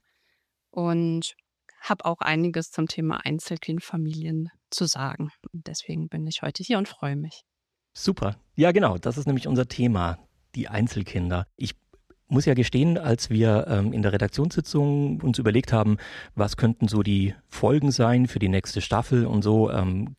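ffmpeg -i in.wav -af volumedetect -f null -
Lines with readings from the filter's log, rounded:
mean_volume: -24.5 dB
max_volume: -6.7 dB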